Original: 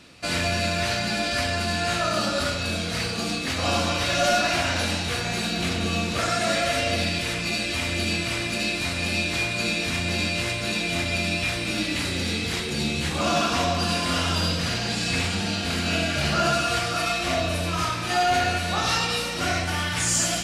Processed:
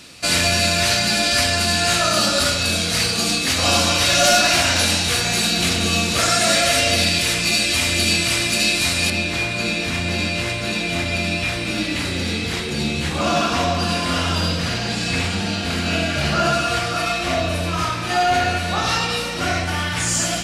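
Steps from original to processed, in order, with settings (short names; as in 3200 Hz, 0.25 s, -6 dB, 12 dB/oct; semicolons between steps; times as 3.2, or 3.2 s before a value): high shelf 3800 Hz +11 dB, from 9.1 s -3 dB; gain +4 dB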